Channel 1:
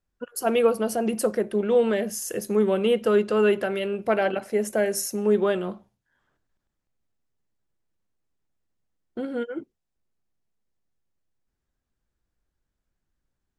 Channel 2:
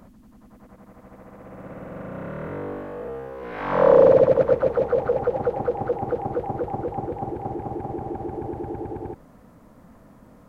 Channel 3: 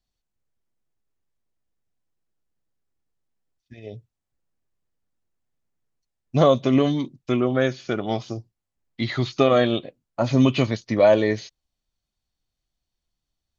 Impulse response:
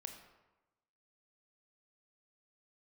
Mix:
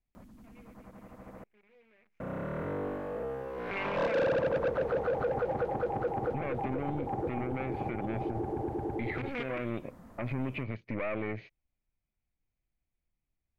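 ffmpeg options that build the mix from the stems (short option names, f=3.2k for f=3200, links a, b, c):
-filter_complex "[0:a]acrusher=bits=5:dc=4:mix=0:aa=0.000001,volume=-1.5dB[a];[1:a]asoftclip=type=tanh:threshold=-19dB,adelay=150,volume=-3dB,asplit=3[b][c][d];[b]atrim=end=1.44,asetpts=PTS-STARTPTS,afade=t=out:st=1.436:d=0.004:c=hsin[e];[c]atrim=start=1.44:end=2.2,asetpts=PTS-STARTPTS,volume=0[f];[d]atrim=start=2.2,asetpts=PTS-STARTPTS,afade=t=in:d=0.004:c=hsin[g];[e][f][g]concat=n=3:v=0:a=1[h];[2:a]tiltshelf=f=1.1k:g=8,acompressor=threshold=-12dB:ratio=6,aeval=exprs='(tanh(7.08*val(0)+0.7)-tanh(0.7))/7.08':c=same,volume=-6.5dB,asplit=2[i][j];[j]apad=whole_len=599305[k];[a][k]sidechaingate=range=-43dB:threshold=-59dB:ratio=16:detection=peak[l];[l][i]amix=inputs=2:normalize=0,lowpass=f=2.3k:t=q:w=6.3,acompressor=threshold=-26dB:ratio=6,volume=0dB[m];[h][m]amix=inputs=2:normalize=0,alimiter=level_in=1dB:limit=-24dB:level=0:latency=1:release=57,volume=-1dB"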